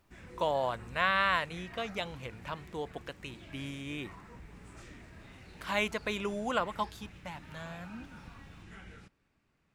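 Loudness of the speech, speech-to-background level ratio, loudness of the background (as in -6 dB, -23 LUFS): -34.0 LUFS, 17.0 dB, -51.0 LUFS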